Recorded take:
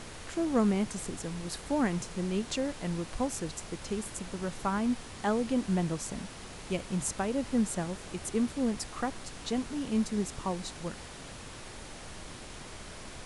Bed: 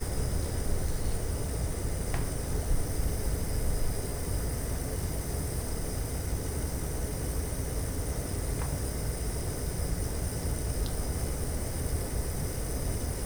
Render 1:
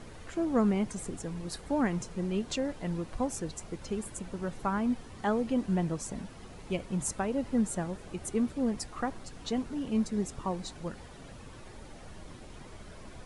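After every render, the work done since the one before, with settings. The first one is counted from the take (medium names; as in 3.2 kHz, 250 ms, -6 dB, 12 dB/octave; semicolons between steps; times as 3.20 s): noise reduction 10 dB, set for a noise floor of -45 dBFS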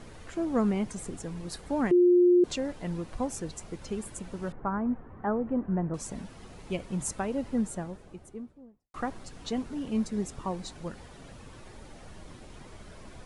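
1.91–2.44 s: bleep 355 Hz -16.5 dBFS; 4.52–5.94 s: low-pass 1.6 kHz 24 dB/octave; 7.31–8.94 s: studio fade out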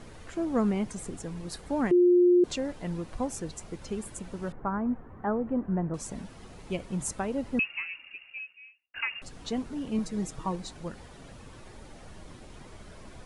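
7.59–9.22 s: frequency inversion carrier 2.8 kHz; 9.98–10.56 s: comb 6.3 ms, depth 54%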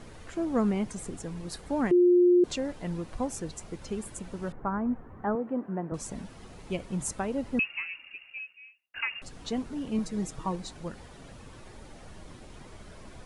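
5.35–5.92 s: high-pass 240 Hz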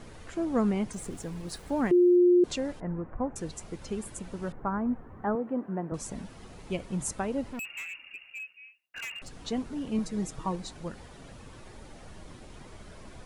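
0.93–2.16 s: small samples zeroed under -50.5 dBFS; 2.80–3.36 s: inverse Chebyshev low-pass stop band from 4.3 kHz, stop band 50 dB; 7.47–9.42 s: overload inside the chain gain 35.5 dB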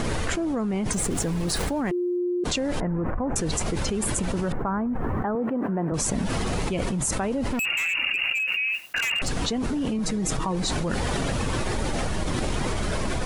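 peak limiter -22.5 dBFS, peak gain reduction 7 dB; level flattener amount 100%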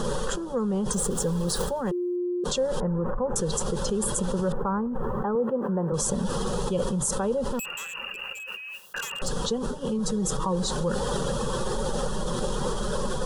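static phaser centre 440 Hz, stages 8; small resonant body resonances 570/3300 Hz, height 10 dB, ringing for 20 ms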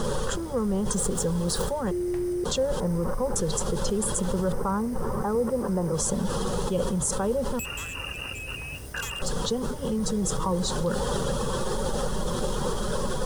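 add bed -8 dB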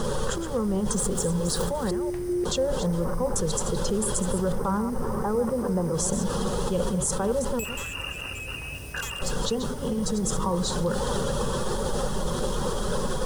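chunks repeated in reverse 191 ms, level -9 dB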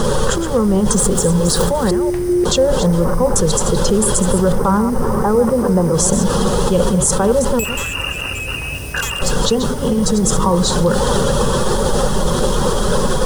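trim +11.5 dB; peak limiter -1 dBFS, peak gain reduction 2.5 dB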